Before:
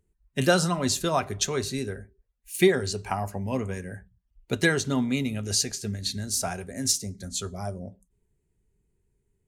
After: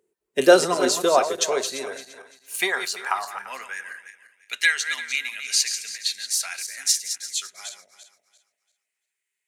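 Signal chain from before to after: backward echo that repeats 171 ms, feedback 49%, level -9 dB; high-pass sweep 420 Hz -> 2.1 kHz, 0.95–4.36 s; trim +3 dB

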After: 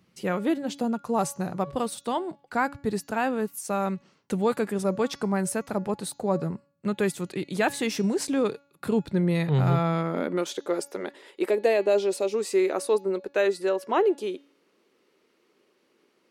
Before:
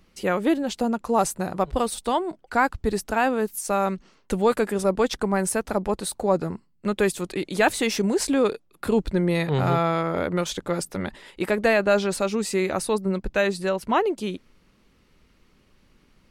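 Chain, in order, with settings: 11.50–12.34 s: peaking EQ 1.4 kHz -11 dB 0.71 oct; de-hum 282.1 Hz, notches 25; high-pass sweep 130 Hz -> 380 Hz, 9.78–10.60 s; trim -5 dB

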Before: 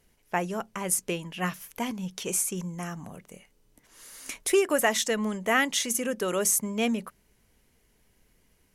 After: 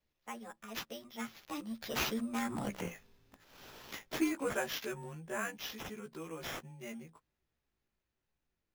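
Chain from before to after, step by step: short-time spectra conjugated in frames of 32 ms; Doppler pass-by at 2.77 s, 55 m/s, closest 8.9 m; sample-and-hold 5×; trim +11.5 dB

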